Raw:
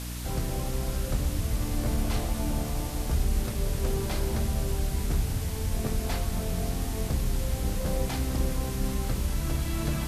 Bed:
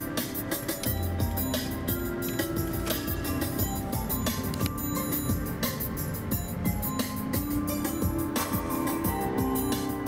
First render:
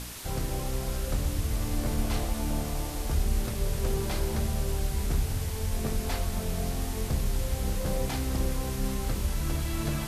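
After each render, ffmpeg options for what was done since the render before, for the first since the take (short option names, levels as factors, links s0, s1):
-af "bandreject=f=60:t=h:w=4,bandreject=f=120:t=h:w=4,bandreject=f=180:t=h:w=4,bandreject=f=240:t=h:w=4,bandreject=f=300:t=h:w=4,bandreject=f=360:t=h:w=4,bandreject=f=420:t=h:w=4,bandreject=f=480:t=h:w=4,bandreject=f=540:t=h:w=4,bandreject=f=600:t=h:w=4,bandreject=f=660:t=h:w=4"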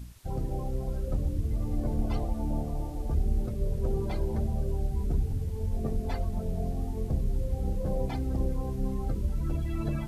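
-af "afftdn=nr=18:nf=-34"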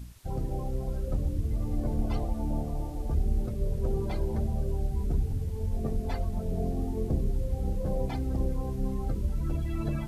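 -filter_complex "[0:a]asettb=1/sr,asplit=3[s0][s1][s2];[s0]atrim=end=6.514[s3];[s1]atrim=start=6.51:end=7.31,asetpts=PTS-STARTPTS,afade=t=in:d=0.004:c=qsin,afade=t=out:st=0.796:d=0.004:c=qsin,equalizer=f=330:t=o:w=1.1:g=7[s4];[s2]atrim=start=7.306[s5];[s3][s4]acrossfade=d=0.004:c1=hsin:c2=qsin[s6];[s6][s5]acrossfade=d=0.004:c1=qsin:c2=hsin"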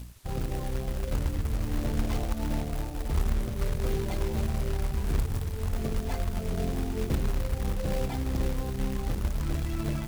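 -af "acrusher=bits=3:mode=log:mix=0:aa=0.000001"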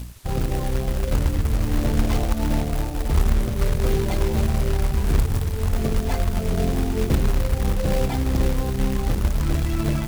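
-af "volume=2.51"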